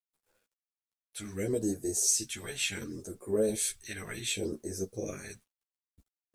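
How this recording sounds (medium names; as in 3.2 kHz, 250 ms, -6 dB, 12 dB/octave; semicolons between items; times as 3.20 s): phasing stages 2, 0.69 Hz, lowest notch 350–2800 Hz; a quantiser's noise floor 12-bit, dither none; a shimmering, thickened sound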